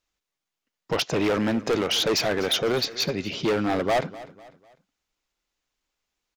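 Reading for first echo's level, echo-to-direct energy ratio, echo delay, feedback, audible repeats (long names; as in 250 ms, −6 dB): −18.0 dB, −17.5 dB, 249 ms, 40%, 3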